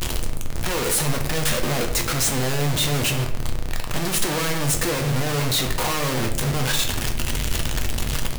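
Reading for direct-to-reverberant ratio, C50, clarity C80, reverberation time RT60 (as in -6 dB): 3.0 dB, 9.0 dB, 12.0 dB, 0.75 s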